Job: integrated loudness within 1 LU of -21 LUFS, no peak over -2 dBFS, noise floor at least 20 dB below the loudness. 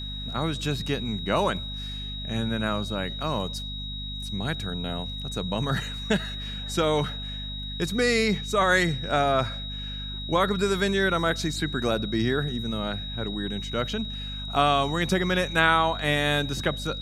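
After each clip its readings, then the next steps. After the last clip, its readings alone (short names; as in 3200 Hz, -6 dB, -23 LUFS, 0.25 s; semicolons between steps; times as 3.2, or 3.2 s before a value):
hum 50 Hz; harmonics up to 250 Hz; hum level -34 dBFS; steady tone 3800 Hz; tone level -35 dBFS; loudness -26.5 LUFS; peak -5.0 dBFS; loudness target -21.0 LUFS
-> de-hum 50 Hz, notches 5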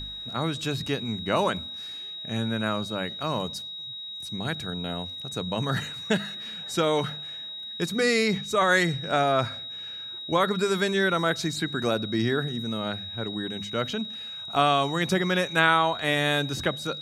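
hum none; steady tone 3800 Hz; tone level -35 dBFS
-> notch 3800 Hz, Q 30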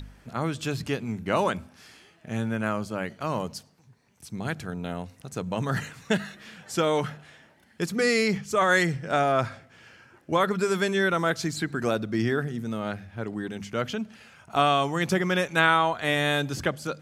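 steady tone none; loudness -26.5 LUFS; peak -5.5 dBFS; loudness target -21.0 LUFS
-> gain +5.5 dB; limiter -2 dBFS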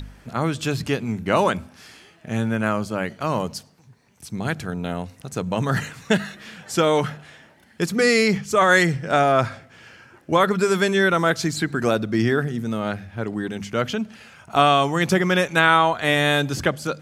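loudness -21.5 LUFS; peak -2.0 dBFS; noise floor -54 dBFS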